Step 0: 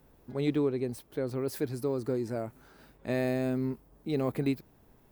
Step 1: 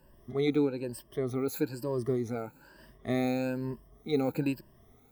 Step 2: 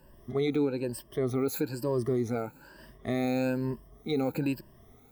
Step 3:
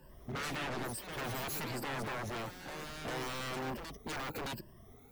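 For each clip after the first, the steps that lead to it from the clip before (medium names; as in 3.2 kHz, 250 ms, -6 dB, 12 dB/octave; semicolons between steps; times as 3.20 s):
drifting ripple filter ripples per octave 1.3, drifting +1.1 Hz, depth 18 dB; trim -2.5 dB
peak limiter -23.5 dBFS, peak gain reduction 7 dB; trim +3.5 dB
coarse spectral quantiser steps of 15 dB; wavefolder -34.5 dBFS; ever faster or slower copies 93 ms, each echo +3 st, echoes 3, each echo -6 dB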